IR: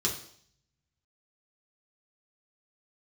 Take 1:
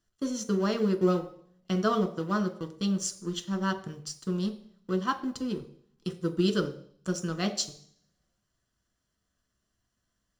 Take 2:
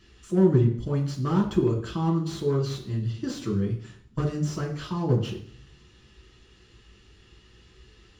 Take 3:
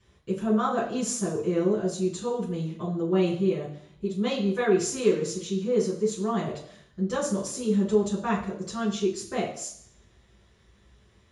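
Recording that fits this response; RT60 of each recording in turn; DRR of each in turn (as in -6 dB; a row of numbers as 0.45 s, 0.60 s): 2; 0.60 s, 0.60 s, 0.60 s; 4.5 dB, -3.0 dB, -10.0 dB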